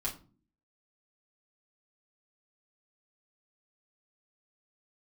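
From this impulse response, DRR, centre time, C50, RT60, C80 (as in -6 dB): -5.5 dB, 16 ms, 12.5 dB, not exponential, 17.5 dB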